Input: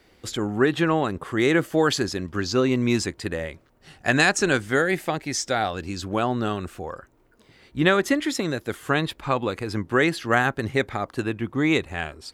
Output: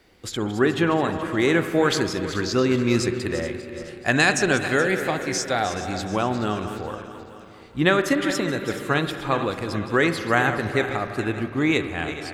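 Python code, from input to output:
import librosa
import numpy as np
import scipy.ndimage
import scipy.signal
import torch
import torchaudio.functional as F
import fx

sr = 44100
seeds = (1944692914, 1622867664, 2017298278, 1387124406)

y = fx.reverse_delay_fb(x, sr, ms=213, feedback_pct=64, wet_db=-11)
y = fx.rev_spring(y, sr, rt60_s=2.6, pass_ms=(42, 47), chirp_ms=80, drr_db=9.5)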